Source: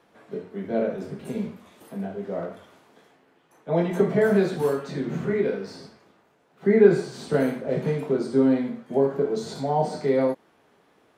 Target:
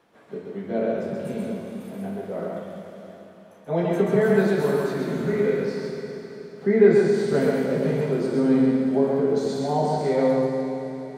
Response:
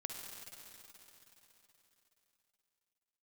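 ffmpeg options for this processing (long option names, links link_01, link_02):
-filter_complex "[0:a]asplit=2[link_01][link_02];[1:a]atrim=start_sample=2205,adelay=133[link_03];[link_02][link_03]afir=irnorm=-1:irlink=0,volume=2dB[link_04];[link_01][link_04]amix=inputs=2:normalize=0,volume=-1.5dB"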